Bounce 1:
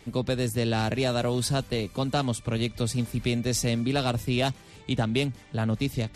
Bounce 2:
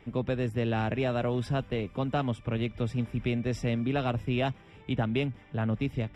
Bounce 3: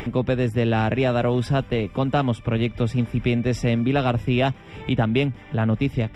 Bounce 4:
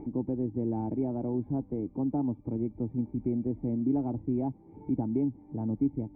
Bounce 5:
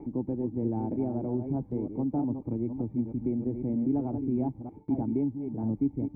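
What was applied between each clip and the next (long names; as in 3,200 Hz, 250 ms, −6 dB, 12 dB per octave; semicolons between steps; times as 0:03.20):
Savitzky-Golay smoothing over 25 samples; level −2.5 dB
upward compression, threshold −31 dBFS; level +8 dB
formant resonators in series u
delay that plays each chunk backwards 313 ms, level −7 dB; noise gate with hold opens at −36 dBFS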